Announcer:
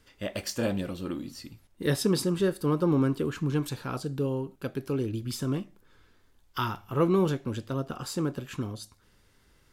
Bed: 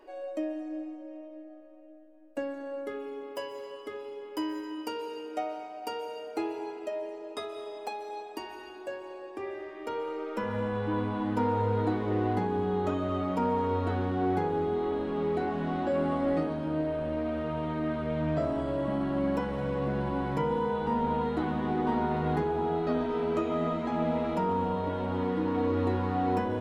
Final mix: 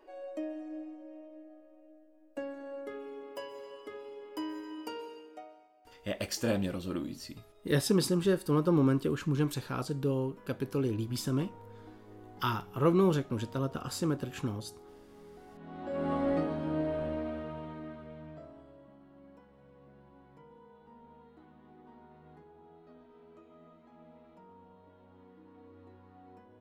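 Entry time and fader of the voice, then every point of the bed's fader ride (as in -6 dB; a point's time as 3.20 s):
5.85 s, -1.5 dB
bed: 4.98 s -5 dB
5.76 s -23.5 dB
15.45 s -23.5 dB
16.12 s -2 dB
17.03 s -2 dB
18.97 s -27.5 dB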